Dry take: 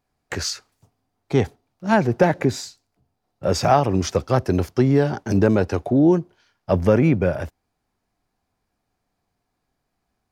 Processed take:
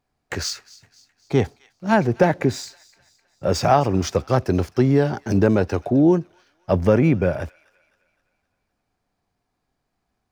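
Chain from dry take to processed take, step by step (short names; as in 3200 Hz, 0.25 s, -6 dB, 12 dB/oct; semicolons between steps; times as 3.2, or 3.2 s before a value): median filter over 3 samples; on a send: thin delay 0.258 s, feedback 48%, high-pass 1700 Hz, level -20 dB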